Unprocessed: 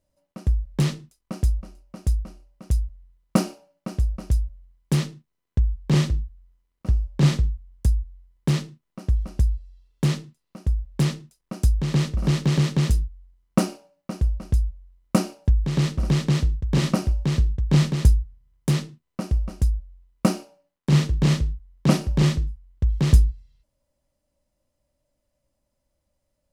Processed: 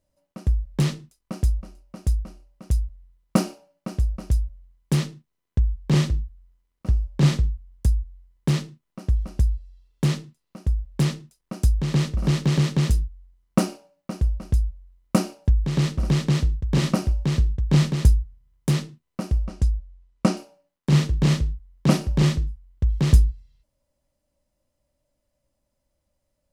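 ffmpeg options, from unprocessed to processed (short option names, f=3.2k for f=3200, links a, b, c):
-filter_complex "[0:a]asettb=1/sr,asplit=3[a][b][c];[a]atrim=end=19.454[d];[b]atrim=start=19.45:end=20.37,asetpts=PTS-STARTPTS,afade=t=in:d=0.004:c=qsin,afade=t=out:st=0.916:d=0.004:c=qsin,lowpass=7.9k[e];[c]atrim=start=20.366[f];[d][e]acrossfade=d=0.004:c1=hsin:c2=qsin[g];[g][f]acrossfade=d=0.004:c1=qsin:c2=hsin"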